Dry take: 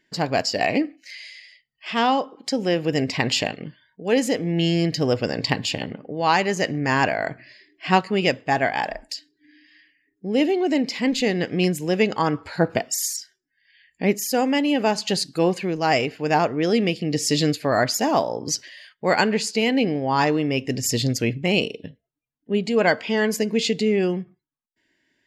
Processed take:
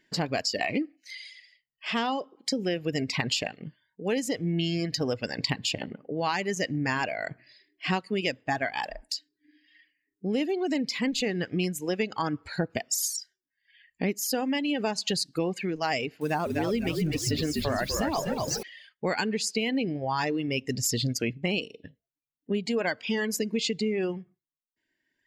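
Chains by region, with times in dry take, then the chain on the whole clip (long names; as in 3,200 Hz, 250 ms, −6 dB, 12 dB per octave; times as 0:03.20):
0:16.21–0:18.63: spike at every zero crossing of −23 dBFS + low-pass filter 3,000 Hz 6 dB per octave + echo with shifted repeats 247 ms, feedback 49%, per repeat −51 Hz, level −3.5 dB
whole clip: reverb reduction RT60 2 s; dynamic equaliser 740 Hz, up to −4 dB, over −32 dBFS, Q 0.86; downward compressor, threshold −24 dBFS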